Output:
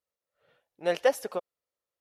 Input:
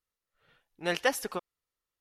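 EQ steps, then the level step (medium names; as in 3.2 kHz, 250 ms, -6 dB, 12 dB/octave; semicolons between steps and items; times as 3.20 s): high-pass 71 Hz 12 dB/octave; peaking EQ 570 Hz +12.5 dB 0.83 oct; -4.5 dB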